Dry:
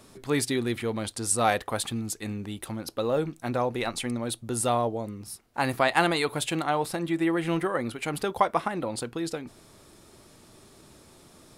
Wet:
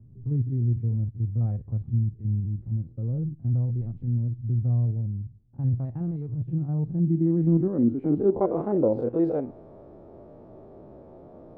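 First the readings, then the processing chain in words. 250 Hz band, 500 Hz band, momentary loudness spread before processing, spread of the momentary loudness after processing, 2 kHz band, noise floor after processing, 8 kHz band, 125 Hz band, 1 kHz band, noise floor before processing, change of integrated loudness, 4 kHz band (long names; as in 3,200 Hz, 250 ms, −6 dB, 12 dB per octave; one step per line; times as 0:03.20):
+3.5 dB, −0.5 dB, 11 LU, 8 LU, below −30 dB, −49 dBFS, below −40 dB, +12.0 dB, −14.0 dB, −55 dBFS, +2.0 dB, below −40 dB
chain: spectrum averaged block by block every 50 ms
low-pass filter sweep 120 Hz → 620 Hz, 0:06.37–0:09.31
level +6.5 dB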